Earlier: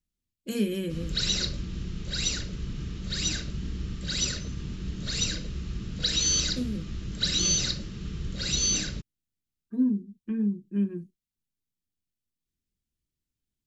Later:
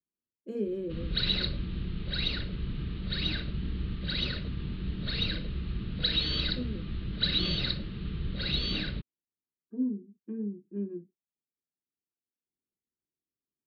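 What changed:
speech: add band-pass 410 Hz, Q 1.7; background: add steep low-pass 4300 Hz 72 dB/oct

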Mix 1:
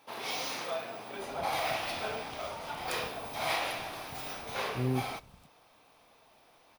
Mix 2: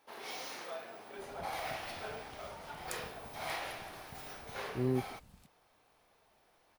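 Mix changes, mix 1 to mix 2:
first sound -8.0 dB; reverb: off

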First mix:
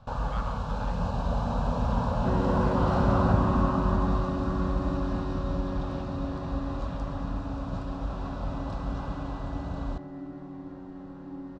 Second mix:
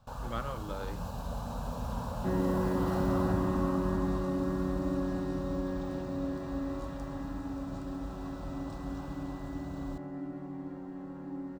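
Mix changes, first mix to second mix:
speech: remove HPF 650 Hz 24 dB/oct; first sound -9.5 dB; master: remove air absorption 140 m

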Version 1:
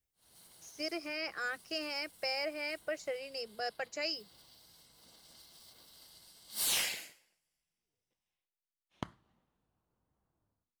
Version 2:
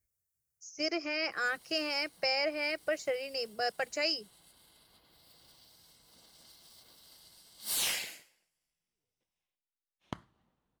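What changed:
speech +5.0 dB; background: entry +1.10 s

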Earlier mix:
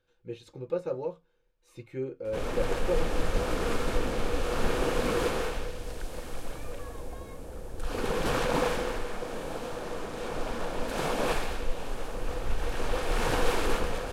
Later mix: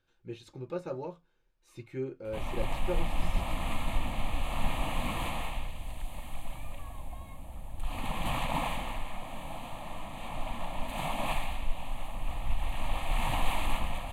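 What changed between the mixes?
background: add fixed phaser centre 1500 Hz, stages 6; master: add bell 490 Hz -12.5 dB 0.22 oct

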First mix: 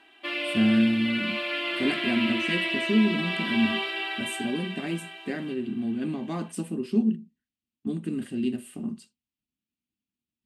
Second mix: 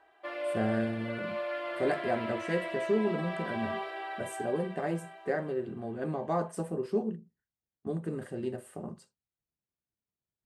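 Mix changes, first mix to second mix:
background -6.5 dB; master: add EQ curve 160 Hz 0 dB, 240 Hz -15 dB, 510 Hz +10 dB, 1800 Hz 0 dB, 2700 Hz -14 dB, 6000 Hz -5 dB, 8700 Hz -7 dB

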